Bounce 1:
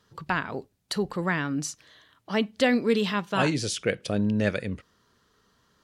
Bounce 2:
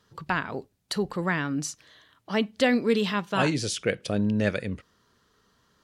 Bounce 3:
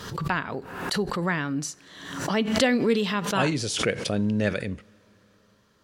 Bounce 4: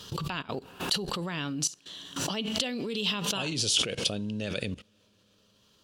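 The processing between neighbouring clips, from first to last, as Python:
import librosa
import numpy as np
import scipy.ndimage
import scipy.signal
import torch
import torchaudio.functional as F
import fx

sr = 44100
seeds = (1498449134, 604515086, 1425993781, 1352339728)

y1 = x
y2 = fx.rev_double_slope(y1, sr, seeds[0], early_s=0.31, late_s=4.7, knee_db=-20, drr_db=19.5)
y2 = fx.pre_swell(y2, sr, db_per_s=57.0)
y3 = fx.level_steps(y2, sr, step_db=17)
y3 = fx.high_shelf_res(y3, sr, hz=2400.0, db=6.0, q=3.0)
y3 = y3 * 10.0 ** (1.0 / 20.0)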